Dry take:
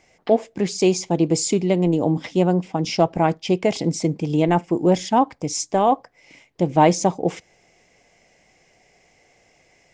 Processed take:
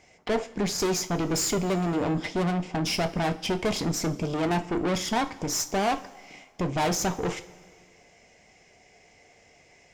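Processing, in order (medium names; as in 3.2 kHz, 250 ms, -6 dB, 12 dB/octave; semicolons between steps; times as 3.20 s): valve stage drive 26 dB, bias 0.55; two-slope reverb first 0.26 s, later 1.9 s, from -18 dB, DRR 7 dB; trim +2.5 dB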